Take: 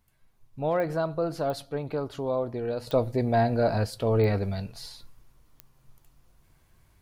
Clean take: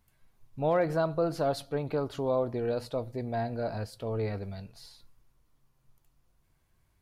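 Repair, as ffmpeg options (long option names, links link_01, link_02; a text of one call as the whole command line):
ffmpeg -i in.wav -af "adeclick=threshold=4,asetnsamples=nb_out_samples=441:pad=0,asendcmd='2.87 volume volume -9dB',volume=0dB" out.wav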